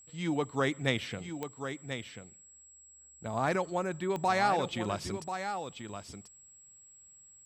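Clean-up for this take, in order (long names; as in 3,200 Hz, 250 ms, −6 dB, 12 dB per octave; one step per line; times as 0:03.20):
click removal
notch filter 7,700 Hz, Q 30
echo removal 1,038 ms −8.5 dB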